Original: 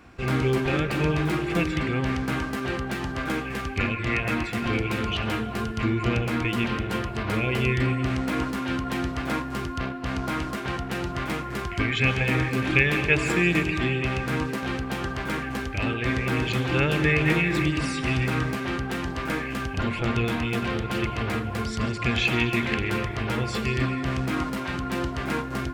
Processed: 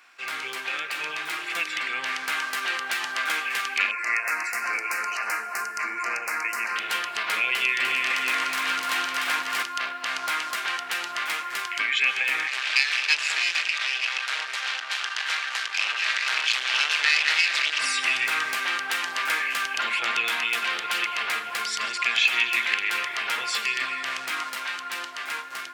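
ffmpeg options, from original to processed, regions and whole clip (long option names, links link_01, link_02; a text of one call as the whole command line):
ffmpeg -i in.wav -filter_complex "[0:a]asettb=1/sr,asplit=3[link_01][link_02][link_03];[link_01]atrim=end=3.914[link_04];[link_02]atrim=start=3.91:end=6.76,asetpts=PTS-STARTPTS,afade=type=in:duration=0.004:curve=qsin,afade=type=out:start_time=2.846:duration=0.004:curve=qsin,asuperstop=centerf=3400:order=4:qfactor=1.1,lowshelf=frequency=230:gain=-12[link_05];[link_03]atrim=start=6.756[link_06];[link_04][link_05]acrossfade=duration=0.004:curve1=hsin:curve2=qsin[link_07];[link_07][link_06]acrossfade=duration=0.004:curve1=qsin:curve2=hsin,asettb=1/sr,asplit=3[link_08][link_09][link_10];[link_08]atrim=end=7.494[link_11];[link_09]atrim=start=7.49:end=9.63,asetpts=PTS-STARTPTS,afade=type=in:duration=0.004:curve=qsin,afade=type=out:start_time=2.136:duration=0.004:curve=qsin,highpass=100,aecho=1:1:137|299|413|613:0.15|0.631|0.355|0.473,atrim=end_sample=94374[link_12];[link_10]atrim=start=9.626[link_13];[link_11][link_12]acrossfade=duration=0.004:curve1=hsin:curve2=qsin[link_14];[link_14][link_13]acrossfade=duration=0.004:curve1=qsin:curve2=hsin,asettb=1/sr,asplit=3[link_15][link_16][link_17];[link_15]atrim=end=12.474[link_18];[link_16]atrim=start=12.47:end=17.8,asetpts=PTS-STARTPTS,afade=type=in:duration=0.004:curve=qsin,afade=type=out:start_time=5.326:duration=0.004:curve=qsin,aeval=exprs='max(val(0),0)':channel_layout=same,highpass=480,lowpass=4700,highshelf=frequency=3000:gain=12[link_19];[link_17]atrim=start=17.796[link_20];[link_18][link_19]acrossfade=duration=0.004:curve1=hsin:curve2=qsin[link_21];[link_21][link_20]acrossfade=duration=0.004:curve1=qsin:curve2=hsin,dynaudnorm=framelen=310:gausssize=13:maxgain=11.5dB,highpass=1500,acompressor=threshold=-32dB:ratio=1.5,volume=3.5dB" out.wav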